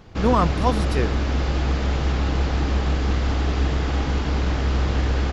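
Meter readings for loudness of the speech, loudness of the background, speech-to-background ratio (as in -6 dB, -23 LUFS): -24.0 LUFS, -23.5 LUFS, -0.5 dB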